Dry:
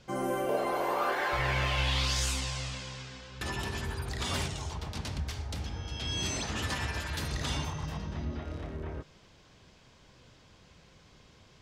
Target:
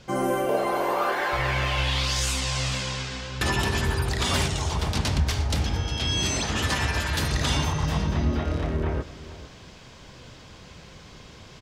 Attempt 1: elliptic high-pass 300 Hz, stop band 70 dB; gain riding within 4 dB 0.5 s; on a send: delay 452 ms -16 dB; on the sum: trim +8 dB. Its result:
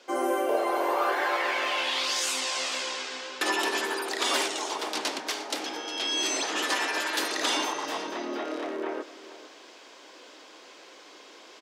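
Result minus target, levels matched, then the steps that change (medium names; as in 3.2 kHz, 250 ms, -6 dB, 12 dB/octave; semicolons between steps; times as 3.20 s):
250 Hz band -3.0 dB
remove: elliptic high-pass 300 Hz, stop band 70 dB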